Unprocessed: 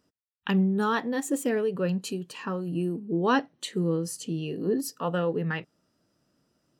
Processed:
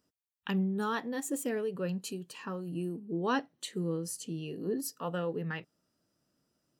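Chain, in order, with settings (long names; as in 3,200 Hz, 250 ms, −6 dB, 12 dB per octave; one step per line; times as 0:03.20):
high-shelf EQ 6,700 Hz +7 dB
level −7 dB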